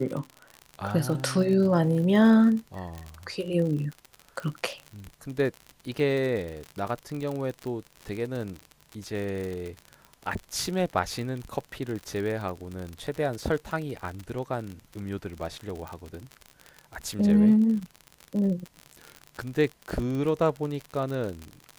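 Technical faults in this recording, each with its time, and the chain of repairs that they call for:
surface crackle 52 per second −31 dBFS
0:15.88: click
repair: click removal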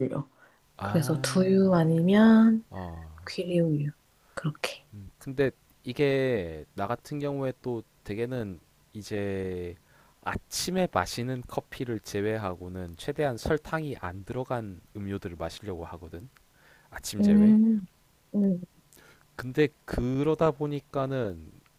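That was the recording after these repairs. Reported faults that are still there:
none of them is left

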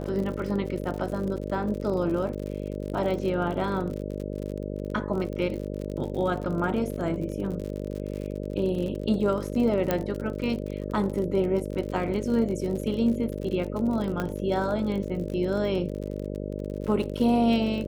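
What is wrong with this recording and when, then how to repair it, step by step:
mains buzz 50 Hz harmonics 12 −33 dBFS
surface crackle 54 per second −33 dBFS
0:09.91: click −10 dBFS
0:14.20: click −16 dBFS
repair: click removal
hum removal 50 Hz, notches 12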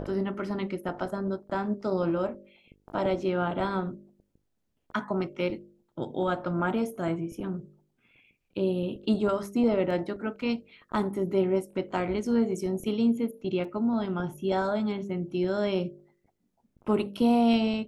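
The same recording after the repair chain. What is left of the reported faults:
0:09.91: click

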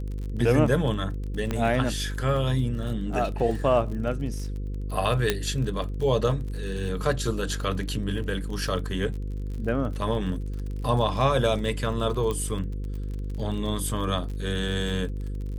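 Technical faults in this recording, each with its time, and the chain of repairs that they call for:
mains buzz 50 Hz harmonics 10 −31 dBFS
surface crackle 42 per second −34 dBFS
0:01.51: click −14 dBFS
0:05.30: click −7 dBFS
0:12.31: click −17 dBFS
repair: click removal
hum removal 50 Hz, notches 10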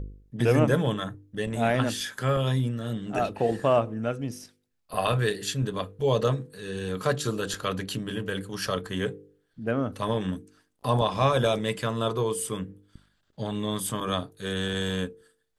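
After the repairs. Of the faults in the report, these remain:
none of them is left

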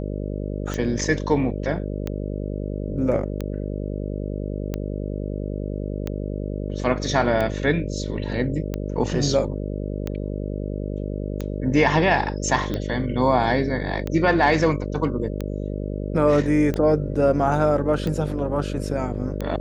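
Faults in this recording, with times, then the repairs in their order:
mains buzz 50 Hz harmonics 12 −28 dBFS
scratch tick 45 rpm −14 dBFS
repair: click removal
hum removal 50 Hz, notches 12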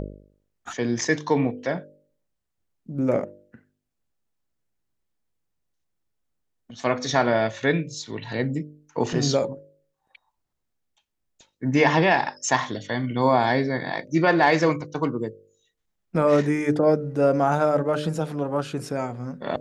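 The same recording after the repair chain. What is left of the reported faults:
none of them is left

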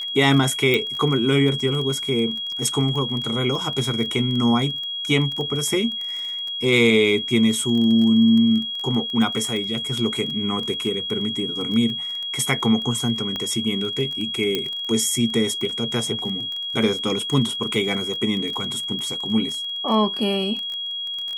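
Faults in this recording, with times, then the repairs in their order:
surface crackle 20 per second −27 dBFS
whistle 3,300 Hz −26 dBFS
0:00.74: click −8 dBFS
0:13.36: click −14 dBFS
0:14.55: click −8 dBFS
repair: click removal
notch filter 3,300 Hz, Q 30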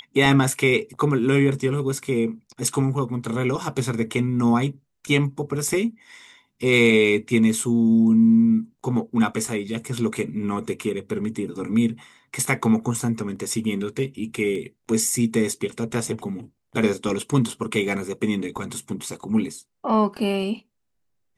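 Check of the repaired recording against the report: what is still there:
0:13.36: click
0:14.55: click

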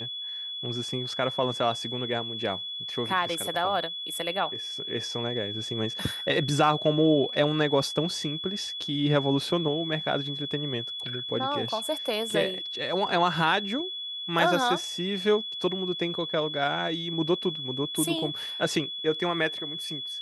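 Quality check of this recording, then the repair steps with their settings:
whistle 3,400 Hz −33 dBFS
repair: notch filter 3,400 Hz, Q 30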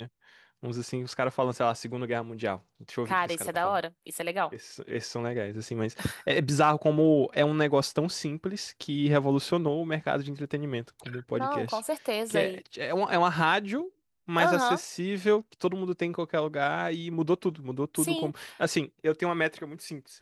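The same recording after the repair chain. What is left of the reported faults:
none of them is left

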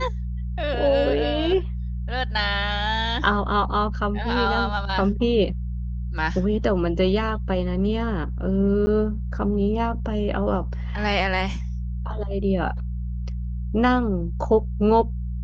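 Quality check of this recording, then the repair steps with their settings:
mains hum 60 Hz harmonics 3 −28 dBFS
0:08.86–0:08.87: drop-out 10 ms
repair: hum removal 60 Hz, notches 3
repair the gap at 0:08.86, 10 ms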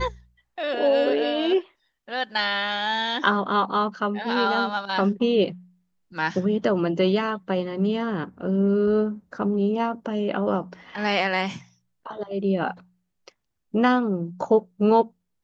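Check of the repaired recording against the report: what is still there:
none of them is left

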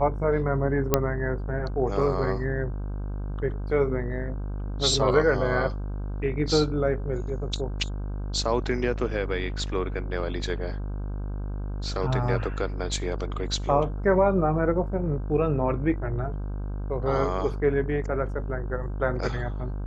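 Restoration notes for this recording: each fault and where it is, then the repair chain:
mains buzz 50 Hz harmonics 32 −31 dBFS
0:00.94: click −4 dBFS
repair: click removal
hum removal 50 Hz, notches 32

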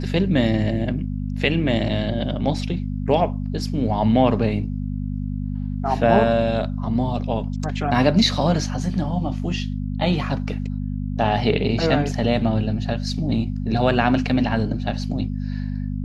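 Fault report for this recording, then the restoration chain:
mains hum 50 Hz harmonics 5 −26 dBFS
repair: hum removal 50 Hz, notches 5

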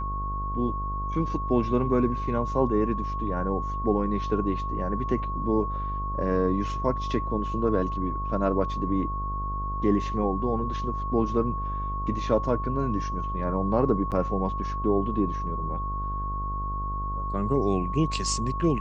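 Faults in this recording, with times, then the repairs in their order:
mains buzz 50 Hz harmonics 23 −32 dBFS
whistle 1,100 Hz −31 dBFS
0:14.11–0:14.12: drop-out 8 ms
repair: hum removal 50 Hz, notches 23
notch filter 1,100 Hz, Q 30
repair the gap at 0:14.11, 8 ms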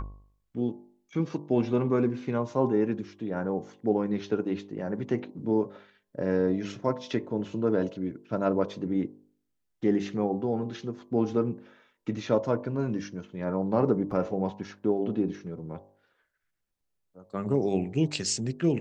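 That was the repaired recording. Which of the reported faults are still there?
none of them is left

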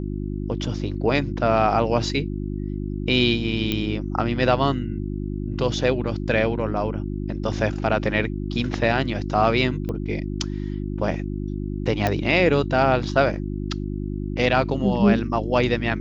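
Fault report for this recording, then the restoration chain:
mains hum 50 Hz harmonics 7 −28 dBFS
0:03.72: click −10 dBFS
0:09.89: click −18 dBFS
0:12.07: click −8 dBFS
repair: click removal
hum removal 50 Hz, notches 7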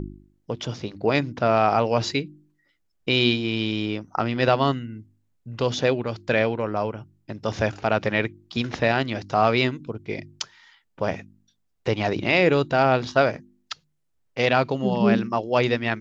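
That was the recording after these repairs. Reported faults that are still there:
none of them is left

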